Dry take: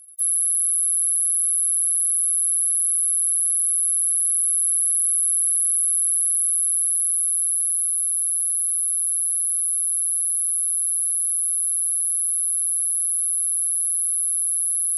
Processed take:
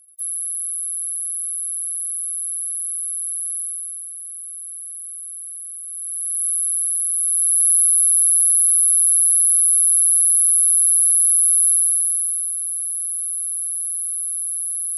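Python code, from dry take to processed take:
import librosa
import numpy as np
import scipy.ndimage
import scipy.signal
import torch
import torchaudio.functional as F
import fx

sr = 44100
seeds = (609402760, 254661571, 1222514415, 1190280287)

y = fx.gain(x, sr, db=fx.line((3.59, -5.0), (4.11, -13.0), (5.83, -13.0), (6.47, 0.0), (7.1, 0.0), (7.71, 7.5), (11.69, 7.5), (12.56, -2.5)))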